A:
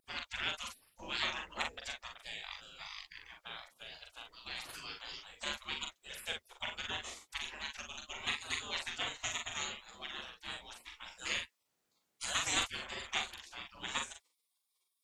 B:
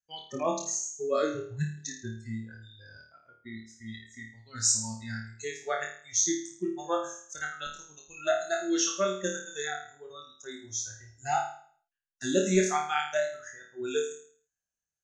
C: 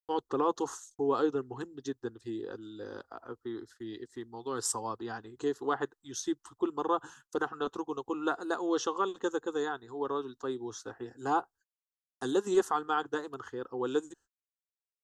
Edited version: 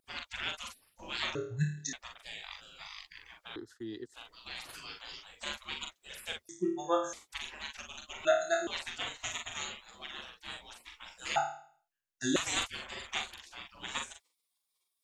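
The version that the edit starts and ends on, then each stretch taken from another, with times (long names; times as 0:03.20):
A
0:01.35–0:01.93: punch in from B
0:03.56–0:04.14: punch in from C
0:06.49–0:07.13: punch in from B
0:08.25–0:08.67: punch in from B
0:11.36–0:12.36: punch in from B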